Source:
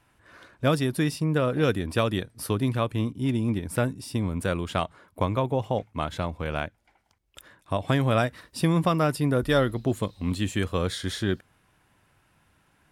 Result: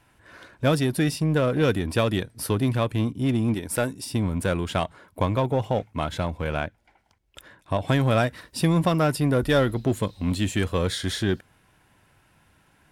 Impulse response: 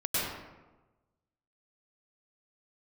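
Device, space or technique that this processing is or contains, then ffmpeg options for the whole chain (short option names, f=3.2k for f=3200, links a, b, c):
parallel distortion: -filter_complex "[0:a]asettb=1/sr,asplit=3[a][b][c];[a]atrim=end=3.544[d];[b]atrim=start=3.54:end=4.05,asetpts=PTS-STARTPTS,afade=t=in:d=0.004:c=qsin,afade=t=out:st=0.506:d=0.004:c=qsin,bass=f=250:g=-8,treble=f=4k:g=4[e];[c]atrim=start=4.046[f];[d][e]acrossfade=d=0.004:c1=hsin:c2=qsin[g];[g][f]acrossfade=d=0.004:c1=qsin:c2=hsin,bandreject=f=1.2k:w=12,asplit=2[h][i];[i]asoftclip=type=hard:threshold=-27dB,volume=-5dB[j];[h][j]amix=inputs=2:normalize=0,asettb=1/sr,asplit=3[k][l][m];[k]atrim=end=6.564[n];[l]atrim=start=6.56:end=7.81,asetpts=PTS-STARTPTS,afade=t=in:d=0.004:c=qsin,afade=t=out:st=1.246:d=0.004:c=qsin,highshelf=f=5.8k:g=-6[o];[m]atrim=start=7.806[p];[n][o]acrossfade=d=0.004:c1=hsin:c2=qsin[q];[q][p]acrossfade=d=0.004:c1=qsin:c2=hsin"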